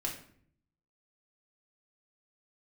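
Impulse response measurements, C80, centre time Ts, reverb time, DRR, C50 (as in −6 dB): 11.5 dB, 23 ms, 0.60 s, −2.5 dB, 7.5 dB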